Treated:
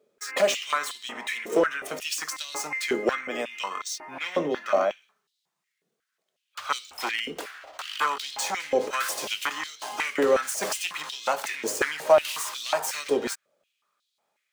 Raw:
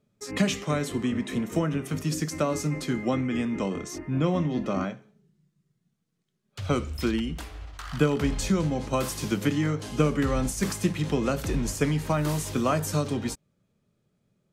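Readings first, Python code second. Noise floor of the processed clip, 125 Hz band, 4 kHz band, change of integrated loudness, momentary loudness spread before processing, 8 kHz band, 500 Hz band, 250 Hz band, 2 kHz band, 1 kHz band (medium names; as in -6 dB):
-81 dBFS, -24.5 dB, +6.0 dB, 0.0 dB, 8 LU, +3.5 dB, +3.5 dB, -10.5 dB, +6.5 dB, +4.5 dB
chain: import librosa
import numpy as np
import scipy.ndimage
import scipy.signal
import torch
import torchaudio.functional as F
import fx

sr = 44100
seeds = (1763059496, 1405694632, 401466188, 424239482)

y = scipy.ndimage.median_filter(x, 3, mode='constant')
y = fx.high_shelf(y, sr, hz=10000.0, db=7.0)
y = np.clip(y, -10.0 ** (-20.0 / 20.0), 10.0 ** (-20.0 / 20.0))
y = fx.filter_held_highpass(y, sr, hz=5.5, low_hz=450.0, high_hz=3800.0)
y = y * 10.0 ** (2.5 / 20.0)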